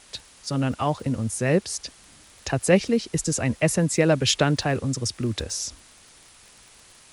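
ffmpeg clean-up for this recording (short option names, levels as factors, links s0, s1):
-af "adeclick=t=4,afwtdn=0.0035"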